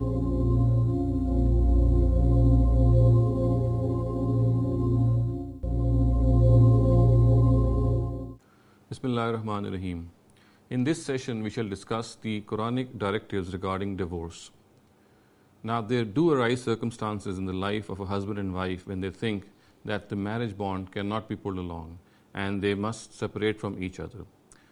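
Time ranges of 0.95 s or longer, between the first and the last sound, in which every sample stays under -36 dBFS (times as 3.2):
14.47–15.65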